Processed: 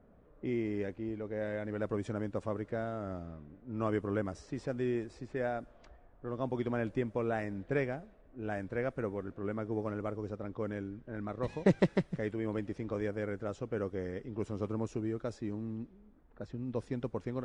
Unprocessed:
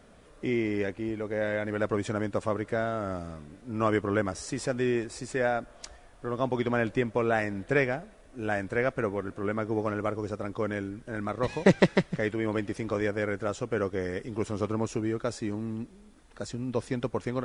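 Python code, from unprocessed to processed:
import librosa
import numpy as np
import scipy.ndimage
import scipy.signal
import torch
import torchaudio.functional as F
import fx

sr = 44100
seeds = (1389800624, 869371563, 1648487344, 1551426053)

y = fx.env_lowpass(x, sr, base_hz=1400.0, full_db=-24.0)
y = fx.tilt_shelf(y, sr, db=4.0, hz=780.0)
y = F.gain(torch.from_numpy(y), -8.5).numpy()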